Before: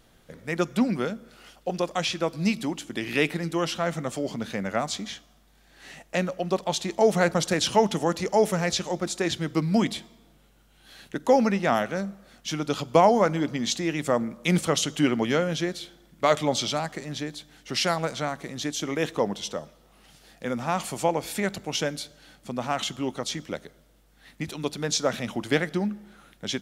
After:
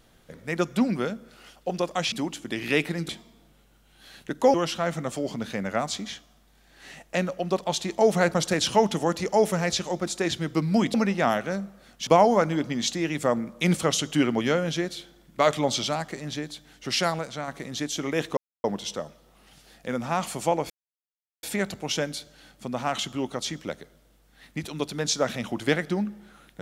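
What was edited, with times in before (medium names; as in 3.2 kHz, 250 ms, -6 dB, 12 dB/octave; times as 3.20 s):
2.12–2.57 s: delete
9.94–11.39 s: move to 3.54 s
12.52–12.91 s: delete
18.03–18.32 s: gain -4.5 dB
19.21 s: insert silence 0.27 s
21.27 s: insert silence 0.73 s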